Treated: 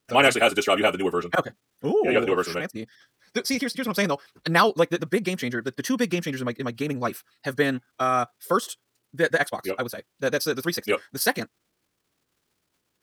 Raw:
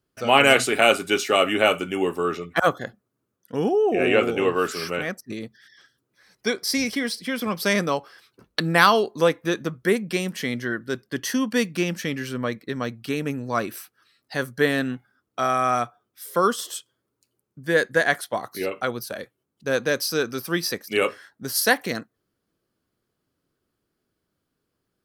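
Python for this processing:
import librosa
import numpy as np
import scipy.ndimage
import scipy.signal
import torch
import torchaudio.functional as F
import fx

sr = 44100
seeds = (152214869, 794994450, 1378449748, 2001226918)

y = fx.dmg_crackle(x, sr, seeds[0], per_s=270.0, level_db=-55.0)
y = fx.stretch_vocoder(y, sr, factor=0.52)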